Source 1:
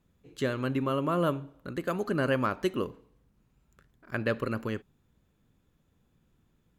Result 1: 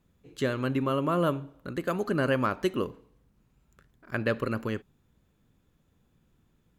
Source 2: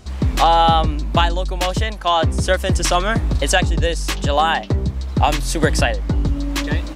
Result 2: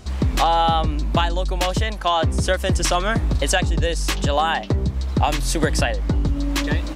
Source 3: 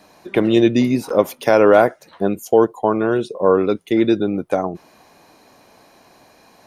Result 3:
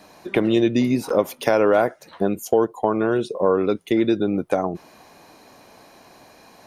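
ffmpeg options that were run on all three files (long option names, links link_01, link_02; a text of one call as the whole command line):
ffmpeg -i in.wav -af "acompressor=threshold=-20dB:ratio=2,volume=1.5dB" out.wav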